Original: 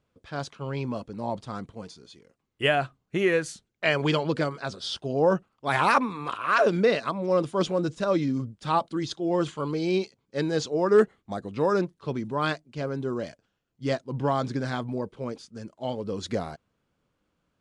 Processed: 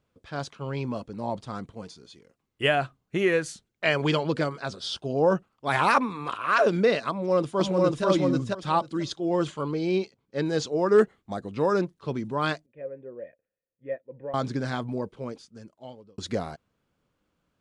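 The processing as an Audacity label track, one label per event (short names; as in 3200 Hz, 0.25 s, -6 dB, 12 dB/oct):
4.890000	5.320000	notch 1900 Hz, Q 7.4
7.100000	8.050000	echo throw 0.49 s, feedback 15%, level -0.5 dB
9.630000	10.460000	high shelf 5600 Hz -9.5 dB
12.660000	14.340000	vocal tract filter e
15.040000	16.180000	fade out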